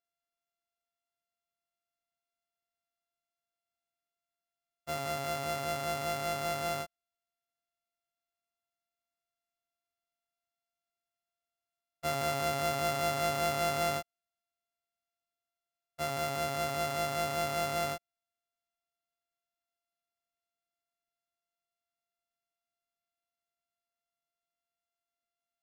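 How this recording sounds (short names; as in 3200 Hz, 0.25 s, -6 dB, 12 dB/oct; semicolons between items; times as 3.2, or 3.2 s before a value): a buzz of ramps at a fixed pitch in blocks of 64 samples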